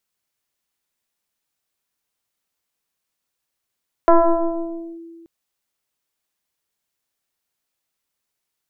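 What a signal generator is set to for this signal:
two-operator FM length 1.18 s, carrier 333 Hz, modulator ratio 1.01, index 2.3, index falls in 0.91 s linear, decay 1.99 s, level −6.5 dB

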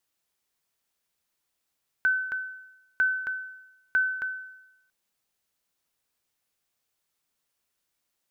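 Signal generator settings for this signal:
ping with an echo 1,520 Hz, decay 0.91 s, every 0.95 s, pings 3, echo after 0.27 s, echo −6 dB −17 dBFS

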